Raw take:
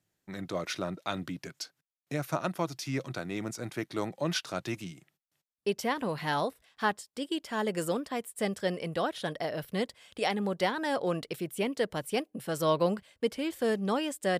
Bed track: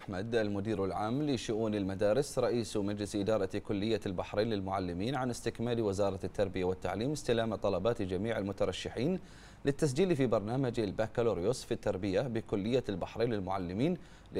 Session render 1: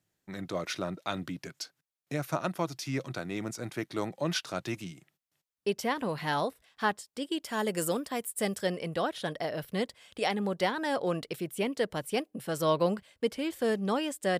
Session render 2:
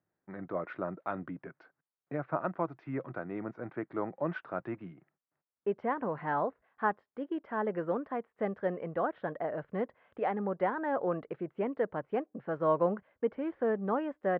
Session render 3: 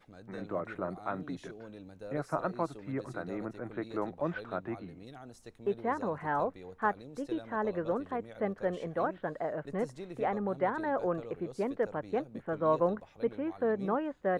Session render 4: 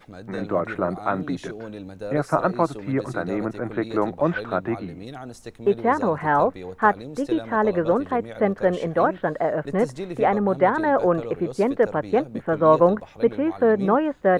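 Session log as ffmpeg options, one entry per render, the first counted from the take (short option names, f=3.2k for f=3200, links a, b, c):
-filter_complex "[0:a]asettb=1/sr,asplit=3[a][b][c];[a]atrim=end=7.444[d];[b]atrim=start=7.44:end=8.67,asetpts=PTS-STARTPTS,afade=t=in:d=0.004:c=qsin,afade=t=out:st=1.226:d=0.004:c=qsin,highshelf=f=7.3k:g=10.5[e];[c]atrim=start=8.666[f];[d][e]acrossfade=d=0.004:c1=hsin:c2=qsin[g];[g][f]acrossfade=d=0.004:c1=qsin:c2=hsin"
-af "lowpass=f=1.6k:w=0.5412,lowpass=f=1.6k:w=1.3066,lowshelf=f=140:g=-11.5"
-filter_complex "[1:a]volume=-15dB[a];[0:a][a]amix=inputs=2:normalize=0"
-af "volume=12dB"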